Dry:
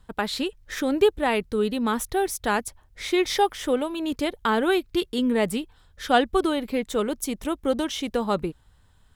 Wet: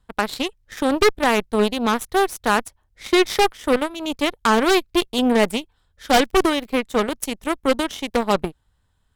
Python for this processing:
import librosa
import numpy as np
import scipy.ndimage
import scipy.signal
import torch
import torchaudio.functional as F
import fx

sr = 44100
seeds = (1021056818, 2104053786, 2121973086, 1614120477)

y = fx.cheby_harmonics(x, sr, harmonics=(4, 7, 8), levels_db=(-28, -18, -37), full_scale_db=-7.0)
y = fx.fold_sine(y, sr, drive_db=7, ceiling_db=-8.0)
y = fx.dmg_crackle(y, sr, seeds[0], per_s=74.0, level_db=-32.0, at=(6.05, 6.74), fade=0.02)